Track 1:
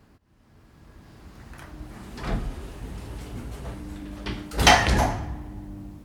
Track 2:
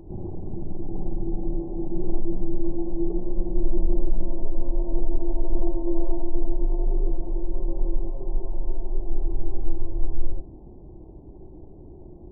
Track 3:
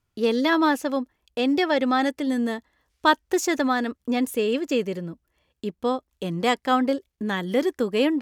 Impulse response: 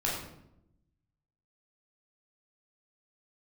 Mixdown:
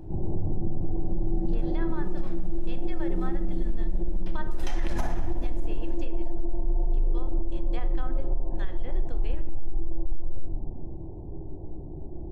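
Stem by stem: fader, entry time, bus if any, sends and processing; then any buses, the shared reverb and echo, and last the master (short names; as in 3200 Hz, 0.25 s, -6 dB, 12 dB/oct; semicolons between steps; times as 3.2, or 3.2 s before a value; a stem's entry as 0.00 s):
4.76 s -17.5 dB -> 5.01 s -6 dB, 0.00 s, send -14.5 dB, echo send -20 dB, notch 4500 Hz, Q 14; compressor 2:1, threshold -25 dBFS, peak gain reduction 8.5 dB
-4.0 dB, 0.00 s, send -3 dB, no echo send, limiter -20 dBFS, peak gain reduction 11.5 dB
-17.0 dB, 1.30 s, send -14.5 dB, no echo send, gate with hold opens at -29 dBFS; low shelf 390 Hz -10.5 dB; treble ducked by the level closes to 1900 Hz, closed at -21 dBFS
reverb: on, RT60 0.80 s, pre-delay 12 ms
echo: feedback echo 0.432 s, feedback 54%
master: limiter -16 dBFS, peak gain reduction 11.5 dB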